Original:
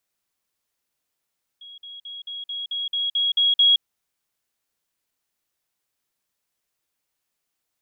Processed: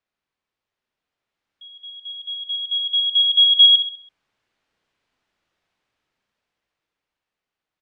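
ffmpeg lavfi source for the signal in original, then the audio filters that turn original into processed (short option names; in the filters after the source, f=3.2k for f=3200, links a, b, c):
-f lavfi -i "aevalsrc='pow(10,(-39.5+3*floor(t/0.22))/20)*sin(2*PI*3310*t)*clip(min(mod(t,0.22),0.17-mod(t,0.22))/0.005,0,1)':d=2.2:s=44100"
-af "lowpass=3.1k,dynaudnorm=f=280:g=13:m=10.5dB,aecho=1:1:66|132|198|264|330:0.398|0.167|0.0702|0.0295|0.0124"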